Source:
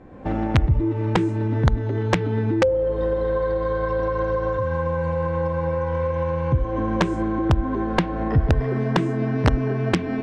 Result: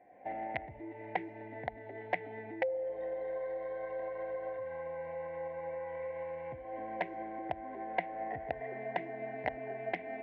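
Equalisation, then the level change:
pair of resonant band-passes 1,200 Hz, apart 1.5 octaves
high-frequency loss of the air 180 metres
parametric band 980 Hz +3 dB 0.34 octaves
−1.5 dB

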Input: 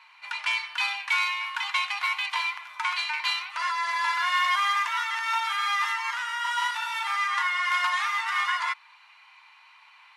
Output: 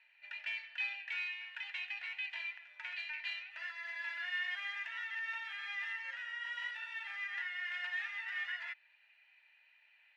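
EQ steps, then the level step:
formant filter e
parametric band 9,800 Hz −3 dB 0.26 octaves
0.0 dB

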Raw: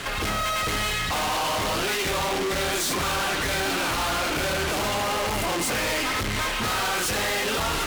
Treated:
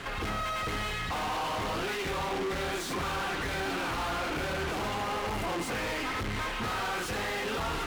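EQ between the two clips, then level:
high-shelf EQ 3,800 Hz −11 dB
notch filter 600 Hz, Q 14
−5.0 dB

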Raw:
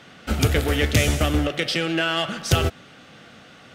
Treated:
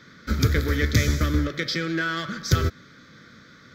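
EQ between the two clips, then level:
phaser with its sweep stopped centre 2,800 Hz, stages 6
0.0 dB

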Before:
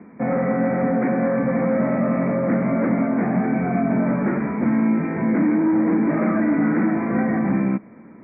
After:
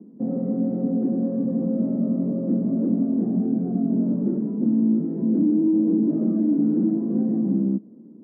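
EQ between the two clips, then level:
flat-topped band-pass 270 Hz, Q 1.1
high-frequency loss of the air 490 metres
0.0 dB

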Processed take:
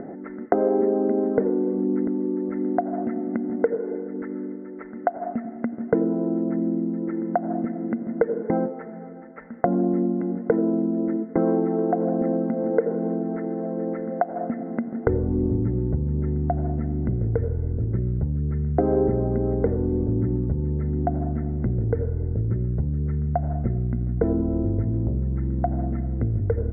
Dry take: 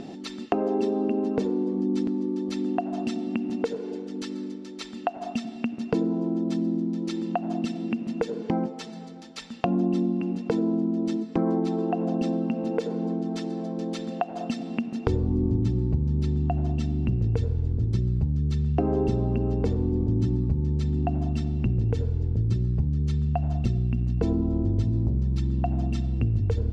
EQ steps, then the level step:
Chebyshev low-pass with heavy ripple 2,100 Hz, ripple 9 dB
+8.5 dB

